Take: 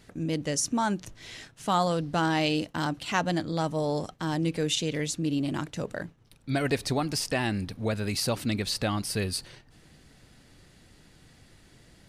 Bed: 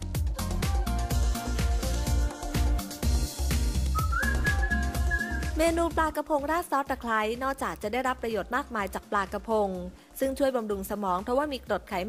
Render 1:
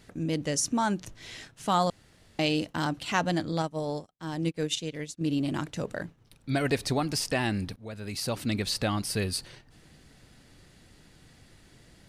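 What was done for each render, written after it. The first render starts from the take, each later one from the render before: 1.90–2.39 s: room tone; 3.62–5.21 s: upward expansion 2.5:1, over -48 dBFS; 7.76–8.57 s: fade in, from -18.5 dB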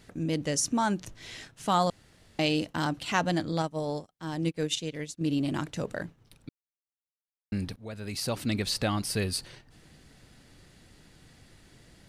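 6.49–7.52 s: mute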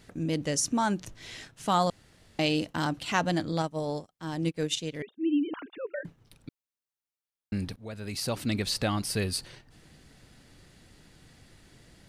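5.02–6.05 s: formants replaced by sine waves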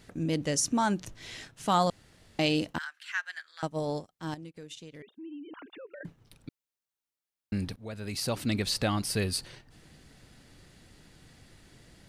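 2.78–3.63 s: ladder high-pass 1.5 kHz, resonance 70%; 4.34–6.01 s: compression 4:1, threshold -44 dBFS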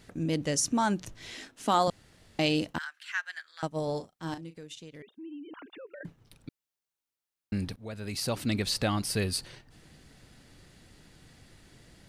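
1.32–1.88 s: resonant low shelf 190 Hz -8 dB, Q 3; 3.84–4.61 s: doubling 36 ms -9.5 dB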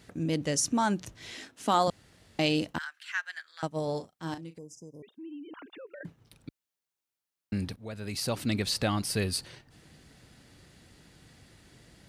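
4.58–5.03 s: spectral selection erased 1.1–4.9 kHz; high-pass 44 Hz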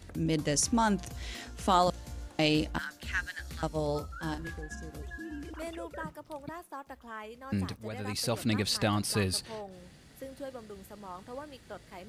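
add bed -16 dB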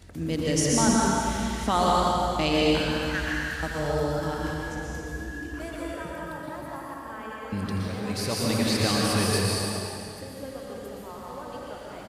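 delay 83 ms -11 dB; plate-style reverb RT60 2.6 s, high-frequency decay 0.85×, pre-delay 105 ms, DRR -4.5 dB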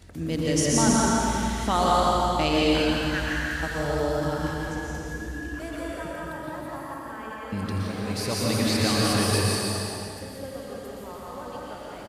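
delay 172 ms -5 dB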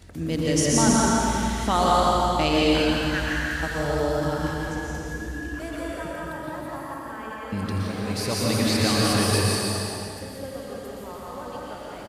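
trim +1.5 dB

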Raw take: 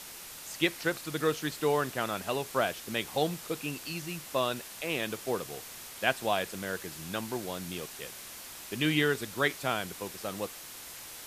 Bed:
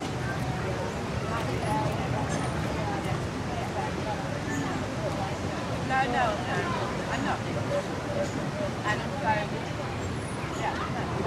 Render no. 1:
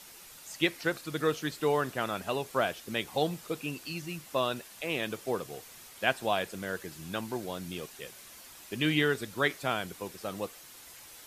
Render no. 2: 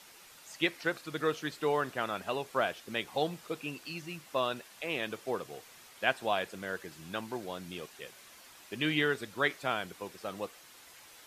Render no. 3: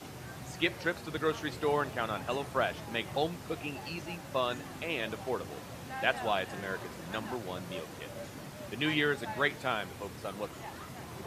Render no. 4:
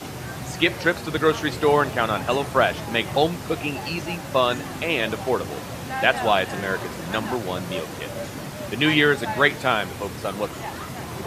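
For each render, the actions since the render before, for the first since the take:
noise reduction 7 dB, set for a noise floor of -46 dBFS
low-pass 2 kHz 6 dB/octave; tilt EQ +2 dB/octave
add bed -14.5 dB
trim +11.5 dB; peak limiter -3 dBFS, peak gain reduction 2.5 dB

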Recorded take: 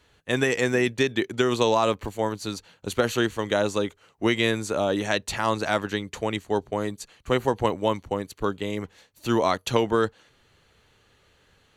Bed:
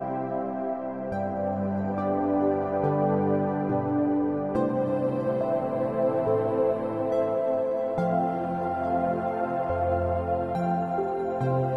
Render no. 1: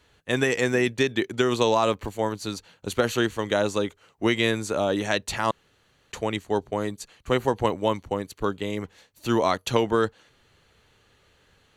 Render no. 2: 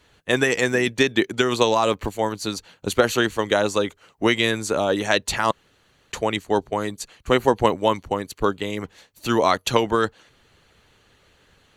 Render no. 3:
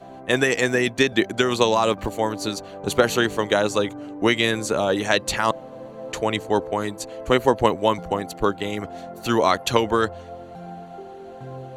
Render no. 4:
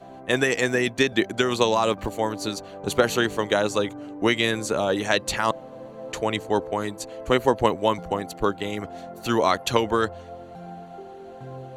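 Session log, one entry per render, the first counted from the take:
5.51–6.12 s: room tone
harmonic-percussive split percussive +6 dB
add bed -11 dB
trim -2 dB

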